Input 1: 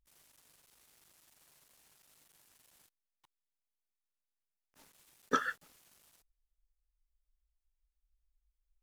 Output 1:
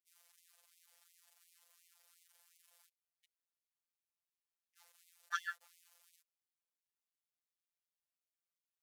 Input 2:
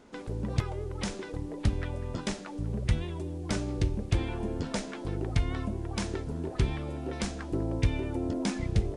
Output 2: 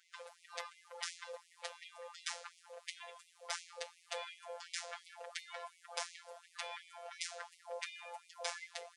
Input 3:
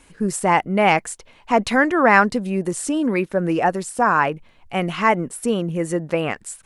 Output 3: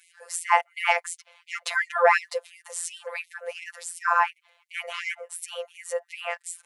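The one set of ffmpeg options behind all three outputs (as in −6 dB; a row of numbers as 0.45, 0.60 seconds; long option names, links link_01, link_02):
-af "afftfilt=real='hypot(re,im)*cos(PI*b)':imag='0':win_size=1024:overlap=0.75,afftfilt=real='re*gte(b*sr/1024,420*pow(2000/420,0.5+0.5*sin(2*PI*2.8*pts/sr)))':imag='im*gte(b*sr/1024,420*pow(2000/420,0.5+0.5*sin(2*PI*2.8*pts/sr)))':win_size=1024:overlap=0.75"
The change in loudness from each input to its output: −7.0, −13.5, −7.5 LU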